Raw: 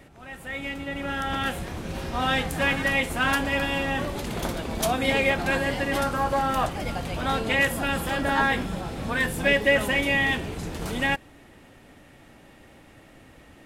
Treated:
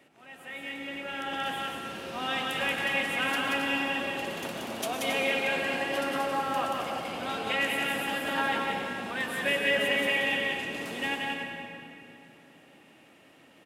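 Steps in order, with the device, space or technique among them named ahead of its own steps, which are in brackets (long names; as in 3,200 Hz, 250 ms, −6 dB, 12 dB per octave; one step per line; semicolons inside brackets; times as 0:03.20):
stadium PA (high-pass filter 230 Hz 12 dB per octave; parametric band 2,800 Hz +6 dB 0.42 octaves; loudspeakers that aren't time-aligned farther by 62 metres −3 dB, 94 metres −9 dB; convolution reverb RT60 3.1 s, pre-delay 92 ms, DRR 3.5 dB)
level −8.5 dB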